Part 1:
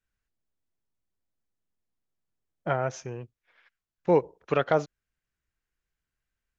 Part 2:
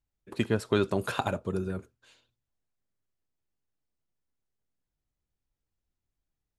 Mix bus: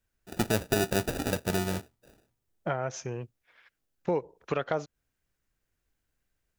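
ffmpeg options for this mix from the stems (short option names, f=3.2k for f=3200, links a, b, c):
-filter_complex "[0:a]acompressor=threshold=-31dB:ratio=2.5,volume=2dB[a];[1:a]alimiter=limit=-17.5dB:level=0:latency=1:release=15,acrusher=samples=41:mix=1:aa=0.000001,volume=2dB[b];[a][b]amix=inputs=2:normalize=0,highshelf=f=6.2k:g=6"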